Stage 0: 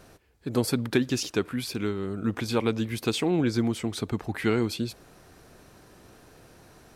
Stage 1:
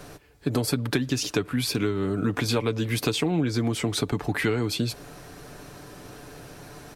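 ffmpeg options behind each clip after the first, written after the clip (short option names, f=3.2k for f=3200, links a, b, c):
-filter_complex "[0:a]aecho=1:1:6.9:0.43,acrossover=split=120[a][b];[a]alimiter=level_in=16dB:limit=-24dB:level=0:latency=1,volume=-16dB[c];[b]acompressor=threshold=-31dB:ratio=6[d];[c][d]amix=inputs=2:normalize=0,volume=8.5dB"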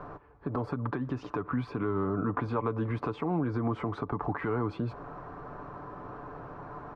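-af "alimiter=limit=-20.5dB:level=0:latency=1:release=148,lowpass=f=1.1k:t=q:w=3.8,volume=-1.5dB"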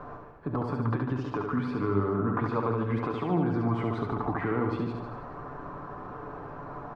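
-af "flanger=delay=3.7:depth=8.9:regen=81:speed=0.33:shape=triangular,aecho=1:1:70|147|231.7|324.9|427.4:0.631|0.398|0.251|0.158|0.1,volume=5dB"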